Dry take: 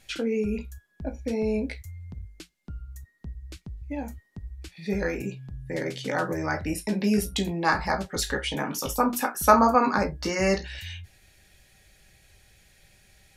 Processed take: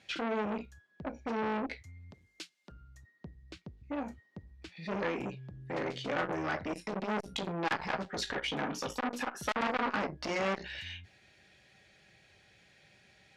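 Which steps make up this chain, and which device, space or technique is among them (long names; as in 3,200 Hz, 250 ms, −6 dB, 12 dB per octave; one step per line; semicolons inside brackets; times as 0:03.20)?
valve radio (band-pass filter 140–4,200 Hz; tube saturation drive 20 dB, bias 0.3; saturating transformer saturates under 1,400 Hz)
0:02.11–0:02.72: RIAA equalisation recording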